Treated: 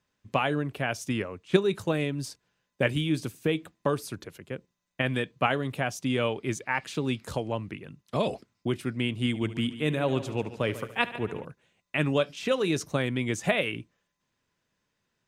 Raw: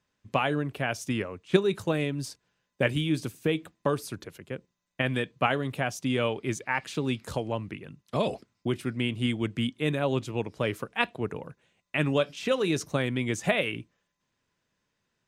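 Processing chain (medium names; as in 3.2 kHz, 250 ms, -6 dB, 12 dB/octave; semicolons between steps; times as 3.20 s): 9.27–11.45 s: multi-head delay 72 ms, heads first and second, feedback 46%, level -16.5 dB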